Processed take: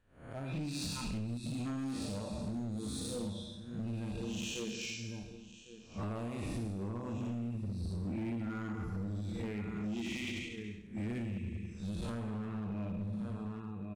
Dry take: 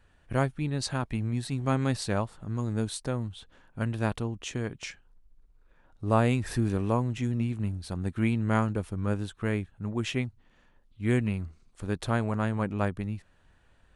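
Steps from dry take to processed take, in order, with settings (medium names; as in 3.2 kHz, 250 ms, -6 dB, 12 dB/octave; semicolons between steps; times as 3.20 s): spectral blur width 261 ms; spectral noise reduction 20 dB; 7.93–8.73 s: small resonant body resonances 290/1400/2000 Hz, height 11 dB; in parallel at -2 dB: gain riding within 3 dB 0.5 s; on the sum: peaking EQ 850 Hz -2 dB 0.45 oct; Schroeder reverb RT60 1.1 s, combs from 30 ms, DRR 5.5 dB; 10.20–11.21 s: transient shaper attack -2 dB, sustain +7 dB; on a send: delay 1106 ms -18.5 dB; on the sum: compression 16:1, threshold -35 dBFS, peak gain reduction 19.5 dB; hard clipper -36.5 dBFS, distortion -13 dB; trim +2.5 dB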